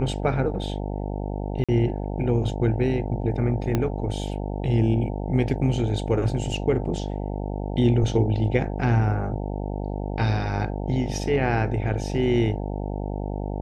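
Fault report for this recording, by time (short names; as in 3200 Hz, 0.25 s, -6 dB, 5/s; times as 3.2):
buzz 50 Hz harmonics 18 -29 dBFS
1.64–1.69 gap 46 ms
3.75 pop -10 dBFS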